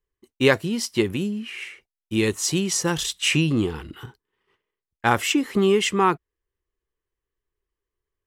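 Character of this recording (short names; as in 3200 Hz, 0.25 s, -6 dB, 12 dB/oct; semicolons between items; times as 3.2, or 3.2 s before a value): noise floor -90 dBFS; spectral tilt -4.0 dB/oct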